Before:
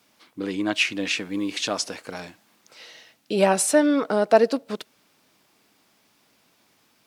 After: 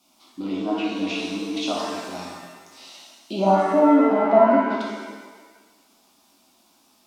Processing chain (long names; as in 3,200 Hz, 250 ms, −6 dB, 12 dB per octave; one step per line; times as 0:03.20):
phaser with its sweep stopped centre 460 Hz, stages 6
treble cut that deepens with the level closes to 1,100 Hz, closed at −22 dBFS
reverb with rising layers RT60 1.3 s, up +7 semitones, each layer −8 dB, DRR −4 dB